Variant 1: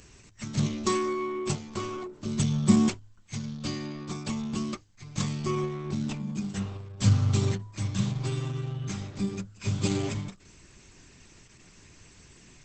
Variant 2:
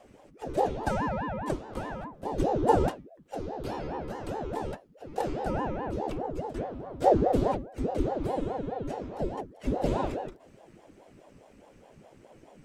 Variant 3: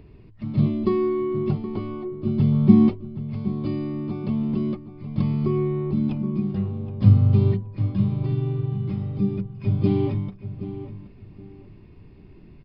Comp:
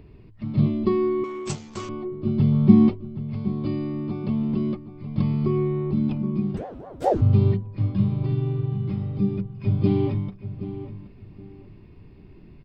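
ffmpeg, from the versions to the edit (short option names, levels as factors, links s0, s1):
-filter_complex "[2:a]asplit=3[s0][s1][s2];[s0]atrim=end=1.242[s3];[0:a]atrim=start=1.238:end=1.892[s4];[s1]atrim=start=1.888:end=6.572[s5];[1:a]atrim=start=6.568:end=7.212[s6];[s2]atrim=start=7.208[s7];[s3][s4]acrossfade=d=0.004:c1=hsin:c2=hsin[s8];[s8][s5]acrossfade=d=0.004:c1=hsin:c2=hsin[s9];[s9][s6]acrossfade=d=0.004:c1=hsin:c2=hsin[s10];[s10][s7]acrossfade=d=0.004:c1=hsin:c2=hsin"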